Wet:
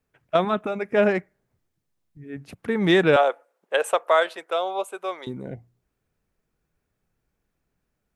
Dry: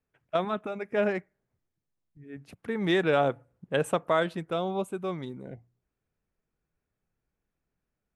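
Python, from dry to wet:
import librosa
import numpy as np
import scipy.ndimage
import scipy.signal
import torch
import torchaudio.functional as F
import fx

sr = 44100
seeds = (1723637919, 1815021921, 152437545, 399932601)

y = fx.highpass(x, sr, hz=490.0, slope=24, at=(3.16, 5.27))
y = F.gain(torch.from_numpy(y), 7.0).numpy()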